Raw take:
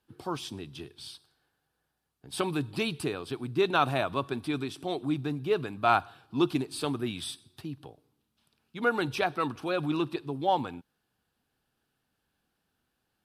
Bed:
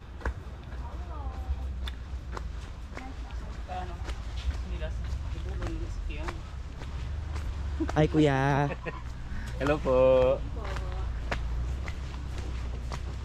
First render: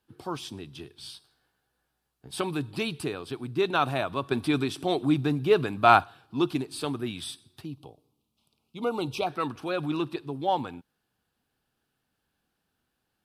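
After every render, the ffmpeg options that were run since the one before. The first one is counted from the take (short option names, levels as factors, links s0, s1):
-filter_complex "[0:a]asettb=1/sr,asplit=3[s0][s1][s2];[s0]atrim=end=1.014[s3];[s1]atrim=start=1.01:end=2.31,asetpts=PTS-STARTPTS,afade=t=in:d=0.004:c=qsin,afade=t=out:st=1.296:d=0.004:c=qsin,asplit=2[s4][s5];[s5]adelay=16,volume=0.708[s6];[s4][s6]amix=inputs=2:normalize=0,atrim=end_sample=57330[s7];[s2]atrim=start=2.306[s8];[s3][s7]acrossfade=d=0.004:c1=hsin:c2=qsin[s9];[s9][s8]acrossfade=d=0.004:c1=qsin:c2=hsin,asettb=1/sr,asplit=3[s10][s11][s12];[s10]atrim=end=7.664[s13];[s11]atrim=start=7.66:end=9.27,asetpts=PTS-STARTPTS,afade=t=in:d=0.004:c=qsin,afade=t=out:st=1.606:d=0.004:c=qsin,asuperstop=centerf=1700:order=4:qfactor=1.4[s14];[s12]atrim=start=9.266[s15];[s13][s14]acrossfade=d=0.004:c1=hsin:c2=qsin[s16];[s16][s15]acrossfade=d=0.004:c1=qsin:c2=hsin,asplit=3[s17][s18][s19];[s17]atrim=end=4.312[s20];[s18]atrim=start=4.308:end=6.042,asetpts=PTS-STARTPTS,volume=2[s21];[s19]atrim=start=6.038[s22];[s20][s21]acrossfade=d=0.004:c1=hsin:c2=hsin[s23];[s23][s22]acrossfade=d=0.004:c1=hsin:c2=hsin"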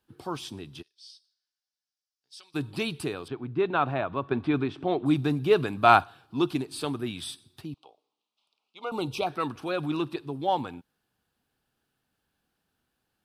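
-filter_complex "[0:a]asplit=3[s0][s1][s2];[s0]afade=t=out:st=0.81:d=0.02[s3];[s1]bandpass=f=5400:t=q:w=4.3,afade=t=in:st=0.81:d=0.02,afade=t=out:st=2.54:d=0.02[s4];[s2]afade=t=in:st=2.54:d=0.02[s5];[s3][s4][s5]amix=inputs=3:normalize=0,asettb=1/sr,asplit=3[s6][s7][s8];[s6]atrim=end=3.284[s9];[s7]atrim=start=3.28:end=5.06,asetpts=PTS-STARTPTS,afade=t=in:d=0.004:c=qsin,afade=t=out:st=1.776:d=0.004:c=qsin,lowpass=2200[s10];[s8]atrim=start=5.056[s11];[s9][s10]acrossfade=d=0.004:c1=hsin:c2=qsin[s12];[s12][s11]acrossfade=d=0.004:c1=qsin:c2=hsin,asettb=1/sr,asplit=3[s13][s14][s15];[s13]atrim=end=7.744[s16];[s14]atrim=start=7.74:end=8.92,asetpts=PTS-STARTPTS,afade=t=in:d=0.004:c=qsin,afade=t=out:st=1.176:d=0.004:c=qsin,highpass=710,lowpass=5100[s17];[s15]atrim=start=8.916[s18];[s16][s17]acrossfade=d=0.004:c1=hsin:c2=qsin[s19];[s19][s18]acrossfade=d=0.004:c1=qsin:c2=hsin"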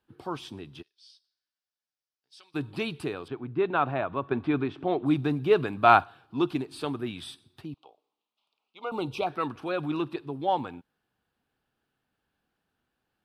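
-af "bass=f=250:g=-2,treble=f=4000:g=-9"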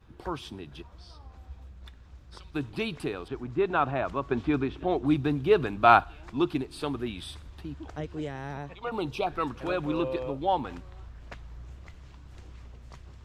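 -filter_complex "[1:a]volume=0.251[s0];[0:a][s0]amix=inputs=2:normalize=0"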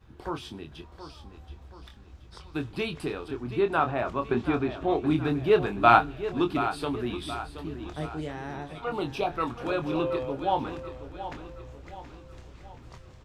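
-filter_complex "[0:a]asplit=2[s0][s1];[s1]adelay=25,volume=0.447[s2];[s0][s2]amix=inputs=2:normalize=0,aecho=1:1:726|1452|2178|2904|3630:0.266|0.122|0.0563|0.0259|0.0119"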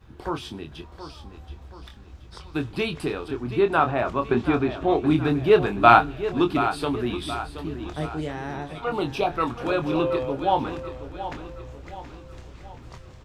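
-af "volume=1.68,alimiter=limit=0.891:level=0:latency=1"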